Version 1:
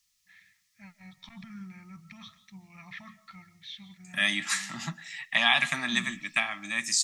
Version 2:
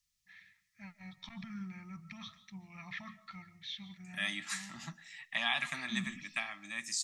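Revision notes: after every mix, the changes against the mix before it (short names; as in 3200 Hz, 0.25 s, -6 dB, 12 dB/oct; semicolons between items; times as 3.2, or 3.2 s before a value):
second voice -10.0 dB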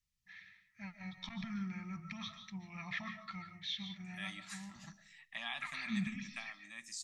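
first voice: send +10.5 dB; second voice -9.5 dB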